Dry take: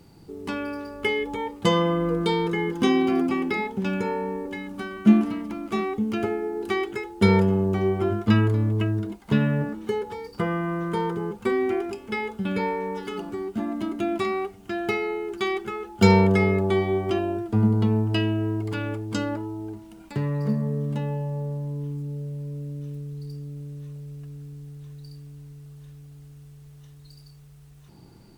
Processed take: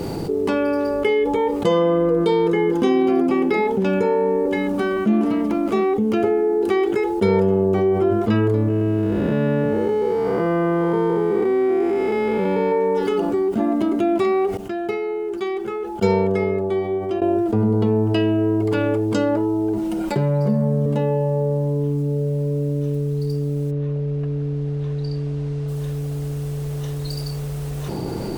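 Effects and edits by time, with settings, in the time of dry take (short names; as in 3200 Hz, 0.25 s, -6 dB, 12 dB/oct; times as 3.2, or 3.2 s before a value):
8.68–12.72 time blur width 0.398 s
14.57–17.22 upward expander 2.5:1, over -26 dBFS
19.77–20.86 comb 5.6 ms, depth 81%
23.7–25.67 LPF 2600 Hz -> 4900 Hz
whole clip: bell 490 Hz +11 dB 1.5 oct; fast leveller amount 70%; gain -7.5 dB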